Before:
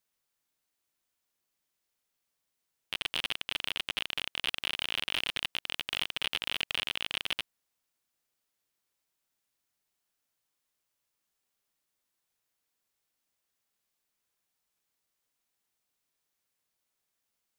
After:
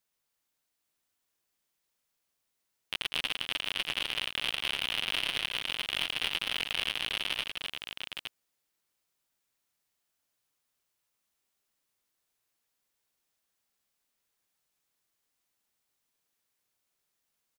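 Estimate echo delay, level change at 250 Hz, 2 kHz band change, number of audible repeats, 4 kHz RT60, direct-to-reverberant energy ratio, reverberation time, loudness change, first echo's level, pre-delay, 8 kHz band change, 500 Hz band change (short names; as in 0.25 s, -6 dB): 0.109 s, +1.5 dB, +1.5 dB, 3, none, none, none, +1.0 dB, -10.5 dB, none, +1.5 dB, +1.5 dB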